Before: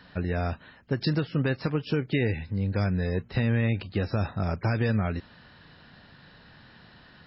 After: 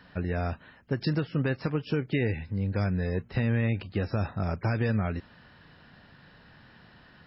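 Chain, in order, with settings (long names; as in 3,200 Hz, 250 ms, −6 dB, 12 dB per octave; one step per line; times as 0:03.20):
parametric band 4,000 Hz −5 dB 0.54 octaves
level −1.5 dB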